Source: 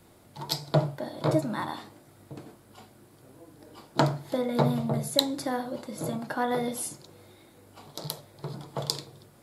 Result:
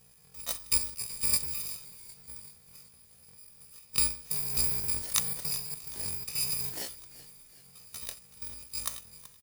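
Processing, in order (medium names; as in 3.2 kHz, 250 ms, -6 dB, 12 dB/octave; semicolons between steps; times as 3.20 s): bit-reversed sample order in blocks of 256 samples; pitch shift +10 st; frequency-shifting echo 379 ms, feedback 49%, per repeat -76 Hz, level -17.5 dB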